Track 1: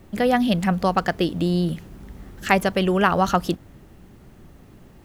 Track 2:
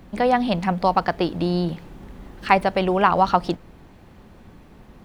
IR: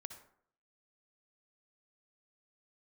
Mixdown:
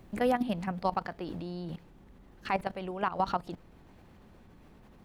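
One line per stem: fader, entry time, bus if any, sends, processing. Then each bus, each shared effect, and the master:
−1.0 dB, 0.00 s, no send, output level in coarse steps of 19 dB; brickwall limiter −13 dBFS, peak gain reduction 6.5 dB; automatic ducking −23 dB, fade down 1.35 s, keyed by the second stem
−4.5 dB, 0.00 s, no send, output level in coarse steps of 17 dB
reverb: not used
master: brickwall limiter −18 dBFS, peak gain reduction 8 dB

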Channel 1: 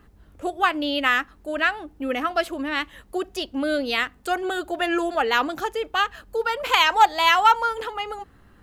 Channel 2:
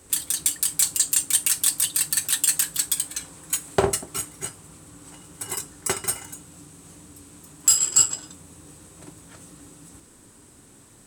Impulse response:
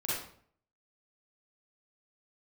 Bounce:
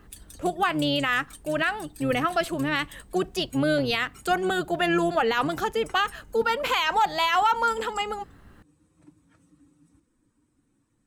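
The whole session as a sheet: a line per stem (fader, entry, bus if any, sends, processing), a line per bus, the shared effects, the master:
+1.0 dB, 0.00 s, no send, sub-octave generator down 1 octave, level −5 dB
−1.0 dB, 0.00 s, no send, spectral dynamics exaggerated over time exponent 1.5; high-shelf EQ 5,400 Hz −9.5 dB; downward compressor 5 to 1, threshold −38 dBFS, peak gain reduction 20 dB; automatic ducking −6 dB, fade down 0.35 s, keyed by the first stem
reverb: not used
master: brickwall limiter −13.5 dBFS, peak gain reduction 10.5 dB

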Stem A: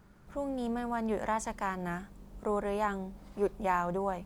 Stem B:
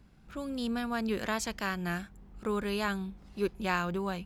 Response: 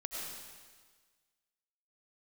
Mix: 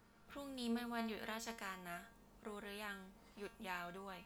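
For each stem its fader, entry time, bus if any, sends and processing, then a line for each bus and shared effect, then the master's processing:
−9.5 dB, 0.00 s, no send, every bin compressed towards the loudest bin 2 to 1
+2.5 dB, 0.00 s, no send, spectral tilt +2 dB per octave; automatic ducking −11 dB, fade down 1.85 s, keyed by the first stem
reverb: not used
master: tuned comb filter 230 Hz, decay 0.35 s, harmonics all, mix 80%

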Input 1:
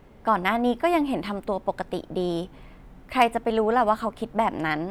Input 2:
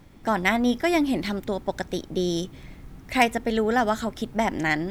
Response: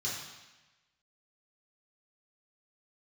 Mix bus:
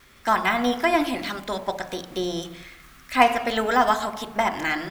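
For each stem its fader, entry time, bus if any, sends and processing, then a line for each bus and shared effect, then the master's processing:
+2.5 dB, 0.00 s, send −8 dB, expander for the loud parts 1.5 to 1, over −36 dBFS
+2.5 dB, 1.4 ms, no send, ceiling on every frequency bin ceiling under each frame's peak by 13 dB; Butterworth high-pass 1,100 Hz 72 dB per octave; de-essing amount 85%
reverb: on, RT60 1.1 s, pre-delay 3 ms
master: no processing

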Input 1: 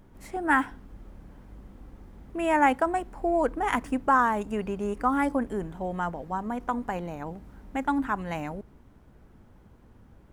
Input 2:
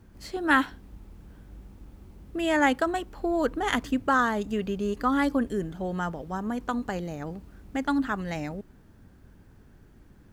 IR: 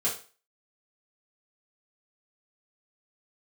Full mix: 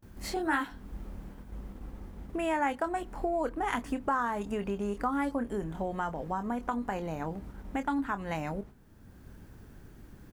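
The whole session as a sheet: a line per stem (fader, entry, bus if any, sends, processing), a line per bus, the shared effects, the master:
+3.0 dB, 0.00 s, no send, noise gate −47 dBFS, range −23 dB
+3.0 dB, 25 ms, no send, high-shelf EQ 7,900 Hz +6 dB; automatic ducking −11 dB, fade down 2.00 s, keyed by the first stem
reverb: not used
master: downward compressor 2.5 to 1, threshold −32 dBFS, peak gain reduction 13 dB

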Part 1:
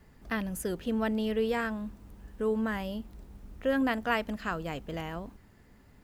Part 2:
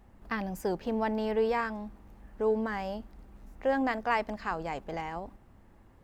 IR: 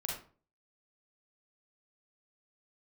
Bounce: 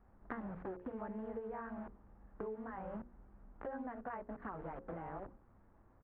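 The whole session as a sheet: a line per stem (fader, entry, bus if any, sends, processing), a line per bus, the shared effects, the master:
−0.5 dB, 0.00 s, no send, bit-depth reduction 6 bits, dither none; tape wow and flutter 130 cents; multiband upward and downward compressor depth 70%; automatic ducking −10 dB, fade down 1.45 s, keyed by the second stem
−8.0 dB, 0.7 ms, no send, bit reduction 10 bits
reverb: not used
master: low-pass filter 1,500 Hz 24 dB per octave; mains-hum notches 60/120/180/240/300/360/420/480/540 Hz; downward compressor 6 to 1, threshold −41 dBFS, peak gain reduction 12 dB

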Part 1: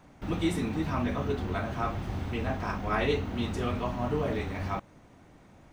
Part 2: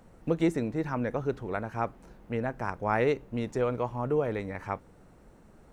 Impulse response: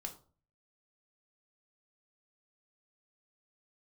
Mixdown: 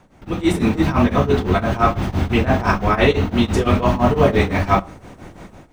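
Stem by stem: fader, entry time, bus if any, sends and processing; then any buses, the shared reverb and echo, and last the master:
+3.0 dB, 0.00 s, send −6 dB, de-essing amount 95%; tremolo along a rectified sine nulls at 5.9 Hz
−5.0 dB, 0.00 s, no send, downward compressor, threshold −32 dBFS, peak gain reduction 11 dB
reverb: on, RT60 0.40 s, pre-delay 3 ms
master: automatic gain control gain up to 15 dB

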